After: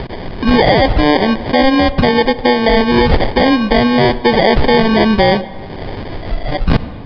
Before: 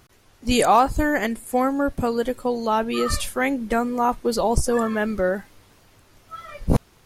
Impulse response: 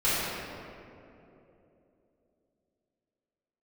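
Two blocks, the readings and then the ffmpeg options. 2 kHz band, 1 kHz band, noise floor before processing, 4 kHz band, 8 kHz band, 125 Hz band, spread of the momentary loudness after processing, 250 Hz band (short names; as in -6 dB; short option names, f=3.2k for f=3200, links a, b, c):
+11.5 dB, +7.5 dB, -56 dBFS, +14.5 dB, under -15 dB, +12.0 dB, 15 LU, +11.5 dB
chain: -filter_complex "[0:a]acompressor=mode=upward:threshold=-22dB:ratio=2.5,acrusher=samples=33:mix=1:aa=0.000001,asplit=2[a][b];[1:a]atrim=start_sample=2205,asetrate=66150,aresample=44100[c];[b][c]afir=irnorm=-1:irlink=0,volume=-29dB[d];[a][d]amix=inputs=2:normalize=0,aresample=11025,aresample=44100,alimiter=level_in=14.5dB:limit=-1dB:release=50:level=0:latency=1,volume=-1dB"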